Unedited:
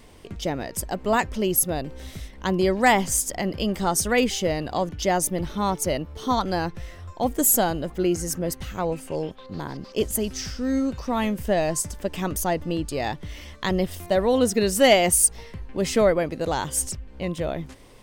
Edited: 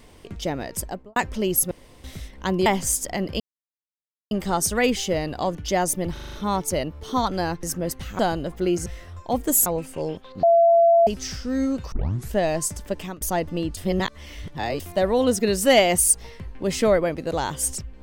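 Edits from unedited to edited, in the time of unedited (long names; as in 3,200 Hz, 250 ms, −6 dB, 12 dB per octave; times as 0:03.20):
0:00.80–0:01.16: fade out and dull
0:01.71–0:02.04: fill with room tone
0:02.66–0:02.91: remove
0:03.65: splice in silence 0.91 s
0:05.47: stutter 0.04 s, 6 plays
0:06.77–0:07.57: swap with 0:08.24–0:08.80
0:09.57–0:10.21: beep over 676 Hz −12 dBFS
0:11.06: tape start 0.41 s
0:12.10–0:12.35: fade out, to −23.5 dB
0:12.91–0:13.94: reverse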